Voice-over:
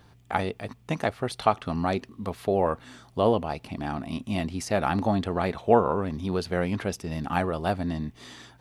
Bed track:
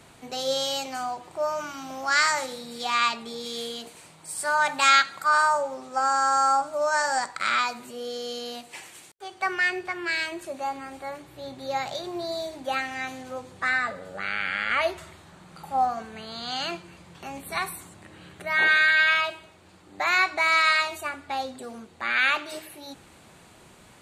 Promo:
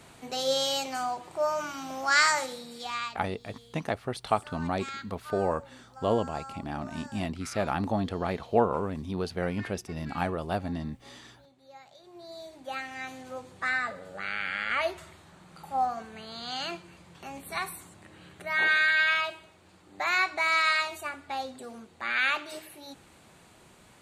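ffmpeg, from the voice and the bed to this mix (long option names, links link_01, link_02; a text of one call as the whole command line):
ffmpeg -i stem1.wav -i stem2.wav -filter_complex "[0:a]adelay=2850,volume=-4dB[link_01];[1:a]volume=17.5dB,afade=type=out:start_time=2.29:duration=0.94:silence=0.0841395,afade=type=in:start_time=11.97:duration=1.37:silence=0.125893[link_02];[link_01][link_02]amix=inputs=2:normalize=0" out.wav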